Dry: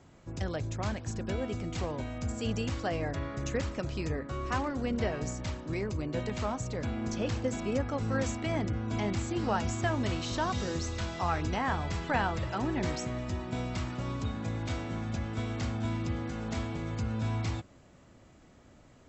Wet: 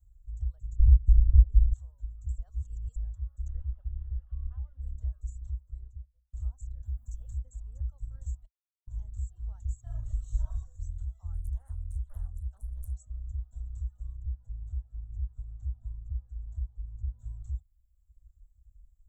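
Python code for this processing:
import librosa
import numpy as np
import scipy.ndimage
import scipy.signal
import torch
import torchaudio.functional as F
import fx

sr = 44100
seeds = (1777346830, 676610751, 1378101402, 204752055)

y = fx.tilt_eq(x, sr, slope=-4.0, at=(0.78, 1.72), fade=0.02)
y = fx.delta_mod(y, sr, bps=16000, step_db=-32.5, at=(3.48, 4.82))
y = fx.studio_fade_out(y, sr, start_s=5.57, length_s=0.76)
y = fx.high_shelf(y, sr, hz=5700.0, db=10.5, at=(6.85, 7.38))
y = fx.reverb_throw(y, sr, start_s=9.81, length_s=0.75, rt60_s=0.88, drr_db=-6.0)
y = fx.doppler_dist(y, sr, depth_ms=0.81, at=(11.34, 12.95))
y = fx.high_shelf(y, sr, hz=2200.0, db=-10.5, at=(14.17, 17.19))
y = fx.edit(y, sr, fx.reverse_span(start_s=2.38, length_s=0.58),
    fx.silence(start_s=8.46, length_s=0.41), tone=tone)
y = scipy.signal.sosfilt(scipy.signal.cheby2(4, 50, [140.0, 5300.0], 'bandstop', fs=sr, output='sos'), y)
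y = fx.dereverb_blind(y, sr, rt60_s=1.1)
y = fx.high_shelf(y, sr, hz=6300.0, db=-9.5)
y = y * 10.0 ** (14.5 / 20.0)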